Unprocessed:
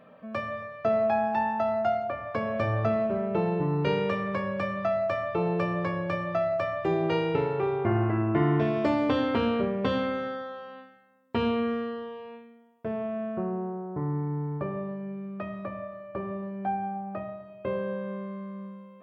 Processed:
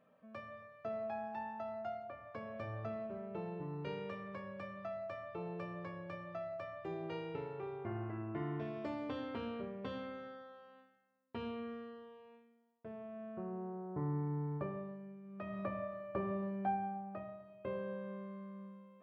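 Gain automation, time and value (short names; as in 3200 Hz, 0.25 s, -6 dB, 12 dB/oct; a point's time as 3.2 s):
13.06 s -16.5 dB
13.99 s -7.5 dB
14.57 s -7.5 dB
15.22 s -16.5 dB
15.6 s -4 dB
16.5 s -4 dB
17.11 s -10.5 dB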